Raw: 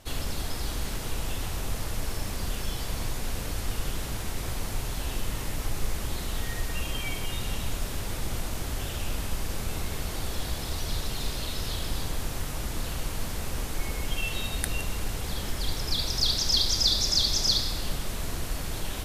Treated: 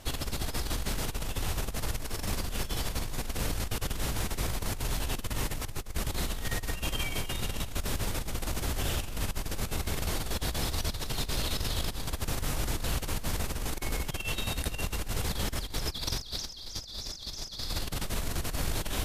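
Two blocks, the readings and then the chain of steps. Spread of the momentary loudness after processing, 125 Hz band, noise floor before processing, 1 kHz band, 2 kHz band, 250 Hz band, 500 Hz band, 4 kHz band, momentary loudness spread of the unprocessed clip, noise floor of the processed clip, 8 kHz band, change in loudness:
3 LU, -1.0 dB, -34 dBFS, -0.5 dB, -0.5 dB, -0.5 dB, -0.5 dB, -7.0 dB, 11 LU, -41 dBFS, -2.5 dB, -3.5 dB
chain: compressor with a negative ratio -31 dBFS, ratio -0.5

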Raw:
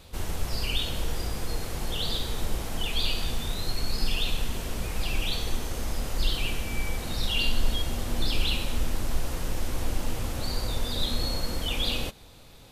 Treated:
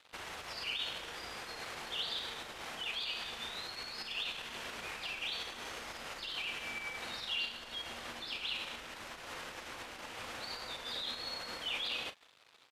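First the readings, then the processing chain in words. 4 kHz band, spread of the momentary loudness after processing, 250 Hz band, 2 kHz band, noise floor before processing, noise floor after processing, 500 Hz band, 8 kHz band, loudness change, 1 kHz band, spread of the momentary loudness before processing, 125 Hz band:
-7.0 dB, 8 LU, -18.0 dB, -4.0 dB, -49 dBFS, -62 dBFS, -11.5 dB, -12.5 dB, -8.5 dB, -6.0 dB, 6 LU, -27.0 dB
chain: compression, threshold -24 dBFS, peak gain reduction 8.5 dB; crossover distortion -49 dBFS; peak limiter -24.5 dBFS, peak gain reduction 7.5 dB; band-pass filter 1.9 kHz, Q 0.81; doubling 39 ms -12 dB; trim +2.5 dB

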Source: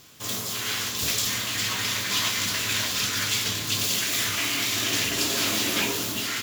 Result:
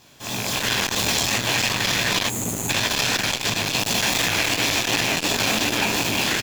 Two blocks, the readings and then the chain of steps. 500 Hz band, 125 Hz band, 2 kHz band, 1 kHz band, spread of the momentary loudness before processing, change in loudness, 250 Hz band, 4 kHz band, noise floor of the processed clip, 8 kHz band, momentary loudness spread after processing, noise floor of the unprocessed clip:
+7.5 dB, +6.5 dB, +5.5 dB, +7.5 dB, 4 LU, +3.5 dB, +6.5 dB, +3.0 dB, -32 dBFS, +2.0 dB, 3 LU, -32 dBFS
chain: rattle on loud lows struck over -36 dBFS, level -18 dBFS; treble shelf 7 kHz -6.5 dB; hum notches 50/100 Hz; comb 1.2 ms, depth 32%; two-band feedback delay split 2.3 kHz, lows 149 ms, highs 670 ms, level -12 dB; time-frequency box 2.27–2.70 s, 440–6200 Hz -22 dB; chorus 2.8 Hz, delay 16.5 ms, depth 7.1 ms; level rider gain up to 11.5 dB; in parallel at -6 dB: sample-and-hold 26×; on the sum: compression, threshold -18 dBFS, peak gain reduction 7.5 dB; bass shelf 130 Hz -7.5 dB; transformer saturation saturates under 1.3 kHz; trim +3 dB

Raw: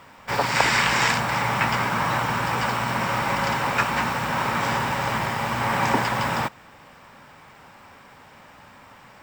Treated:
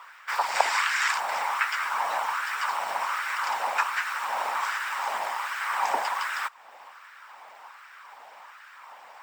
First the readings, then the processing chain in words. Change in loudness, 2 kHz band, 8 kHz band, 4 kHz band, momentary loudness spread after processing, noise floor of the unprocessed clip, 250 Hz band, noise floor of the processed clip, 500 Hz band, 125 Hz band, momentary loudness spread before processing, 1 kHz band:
-4.5 dB, -4.0 dB, -4.5 dB, -6.0 dB, 23 LU, -49 dBFS, under -25 dB, -50 dBFS, -9.0 dB, under -40 dB, 6 LU, -3.5 dB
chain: LFO high-pass sine 1.3 Hz 690–1500 Hz; harmonic-percussive split harmonic -9 dB; dynamic bell 9.8 kHz, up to +5 dB, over -44 dBFS, Q 0.74; in parallel at +2.5 dB: compression, threshold -38 dBFS, peak gain reduction 26 dB; on the sum: trim -6.5 dB

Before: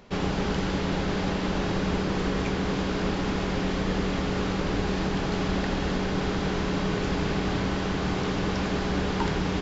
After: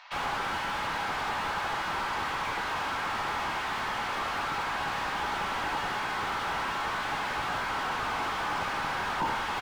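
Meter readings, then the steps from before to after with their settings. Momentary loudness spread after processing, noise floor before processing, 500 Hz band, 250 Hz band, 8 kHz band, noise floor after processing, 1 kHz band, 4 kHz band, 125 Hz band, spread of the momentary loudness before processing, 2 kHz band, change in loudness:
1 LU, -29 dBFS, -10.0 dB, -17.0 dB, no reading, -33 dBFS, +4.0 dB, -1.5 dB, -16.5 dB, 1 LU, +2.5 dB, -3.0 dB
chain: reverb removal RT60 0.62 s; steep high-pass 770 Hz 48 dB/octave; treble shelf 2.3 kHz +8 dB; upward compressor, threshold -54 dBFS; distance through air 220 m; delay 73 ms -6.5 dB; simulated room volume 220 m³, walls furnished, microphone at 2.8 m; slew-rate limiter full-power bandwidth 34 Hz; trim +2.5 dB

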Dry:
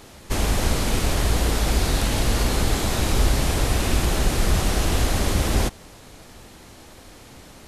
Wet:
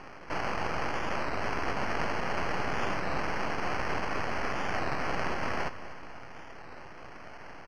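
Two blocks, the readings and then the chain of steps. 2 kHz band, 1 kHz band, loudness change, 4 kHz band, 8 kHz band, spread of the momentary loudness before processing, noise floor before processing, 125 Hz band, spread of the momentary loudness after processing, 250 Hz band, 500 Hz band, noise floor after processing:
-3.0 dB, -2.5 dB, -10.0 dB, -14.5 dB, -22.5 dB, 1 LU, -46 dBFS, -18.0 dB, 15 LU, -11.5 dB, -7.0 dB, -45 dBFS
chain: high-pass 670 Hz 24 dB/octave; in parallel at +2 dB: compression, threshold -42 dBFS, peak gain reduction 15.5 dB; on the sum: sample-and-hold 12×; half-wave rectifier; distance through air 160 m; on a send: feedback delay 248 ms, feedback 55%, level -14.5 dB; on the sum: warped record 33 1/3 rpm, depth 100 cents

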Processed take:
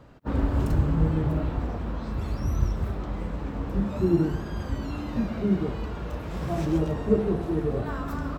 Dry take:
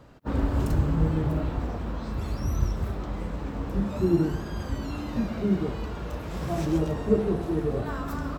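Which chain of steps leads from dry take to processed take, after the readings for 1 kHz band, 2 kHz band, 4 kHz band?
0.0 dB, 0.0 dB, -1.5 dB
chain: tone controls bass +1 dB, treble -4 dB

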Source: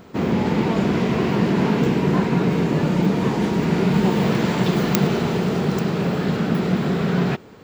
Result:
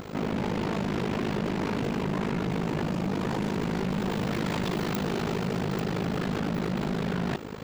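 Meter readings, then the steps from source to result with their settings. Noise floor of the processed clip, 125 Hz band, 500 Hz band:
-36 dBFS, -10.0 dB, -9.0 dB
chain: in parallel at +1 dB: compressor with a negative ratio -29 dBFS, ratio -1; on the sum: AM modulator 52 Hz, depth 90%; overload inside the chain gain 22 dB; trim -3 dB

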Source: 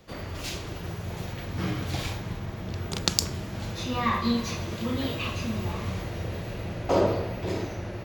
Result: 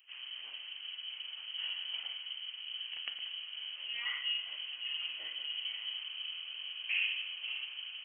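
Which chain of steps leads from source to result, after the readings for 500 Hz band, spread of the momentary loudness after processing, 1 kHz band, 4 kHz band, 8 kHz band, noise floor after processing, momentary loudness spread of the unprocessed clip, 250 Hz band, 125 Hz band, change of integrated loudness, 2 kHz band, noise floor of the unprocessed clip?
under -35 dB, 8 LU, -26.5 dB, +1.0 dB, under -40 dB, -48 dBFS, 10 LU, under -40 dB, under -40 dB, -7.5 dB, -2.0 dB, -38 dBFS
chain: frequency inversion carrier 3.1 kHz; differentiator; band-stop 390 Hz, Q 12; trim -2.5 dB

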